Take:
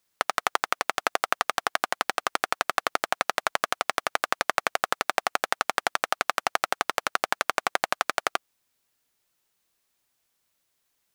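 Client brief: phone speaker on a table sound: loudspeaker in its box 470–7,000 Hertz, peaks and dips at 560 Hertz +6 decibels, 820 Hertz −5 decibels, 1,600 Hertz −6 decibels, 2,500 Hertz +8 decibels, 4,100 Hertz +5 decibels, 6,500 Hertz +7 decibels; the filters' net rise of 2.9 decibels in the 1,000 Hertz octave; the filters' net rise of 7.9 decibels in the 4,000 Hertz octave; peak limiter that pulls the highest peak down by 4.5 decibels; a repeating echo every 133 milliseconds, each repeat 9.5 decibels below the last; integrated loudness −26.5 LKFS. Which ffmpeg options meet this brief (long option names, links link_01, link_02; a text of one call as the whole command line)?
ffmpeg -i in.wav -af "equalizer=frequency=1000:width_type=o:gain=6,equalizer=frequency=4000:width_type=o:gain=5,alimiter=limit=-3dB:level=0:latency=1,highpass=frequency=470:width=0.5412,highpass=frequency=470:width=1.3066,equalizer=frequency=560:width_type=q:width=4:gain=6,equalizer=frequency=820:width_type=q:width=4:gain=-5,equalizer=frequency=1600:width_type=q:width=4:gain=-6,equalizer=frequency=2500:width_type=q:width=4:gain=8,equalizer=frequency=4100:width_type=q:width=4:gain=5,equalizer=frequency=6500:width_type=q:width=4:gain=7,lowpass=frequency=7000:width=0.5412,lowpass=frequency=7000:width=1.3066,aecho=1:1:133|266|399|532:0.335|0.111|0.0365|0.012,volume=-0.5dB" out.wav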